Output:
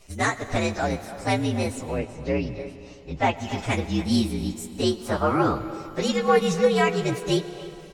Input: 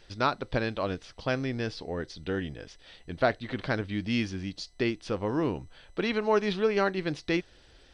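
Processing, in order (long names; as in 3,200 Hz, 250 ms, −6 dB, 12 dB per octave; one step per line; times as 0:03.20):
partials spread apart or drawn together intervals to 120%
0:01.98–0:03.37: Bessel low-pass filter 3,700 Hz, order 2
far-end echo of a speakerphone 290 ms, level −14 dB
in parallel at −9 dB: asymmetric clip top −24 dBFS
0:04.91–0:05.55: on the sum: flat-topped bell 1,000 Hz +10 dB 1.3 octaves
on a send at −13.5 dB: convolution reverb RT60 3.2 s, pre-delay 70 ms
on the sum: level +5 dB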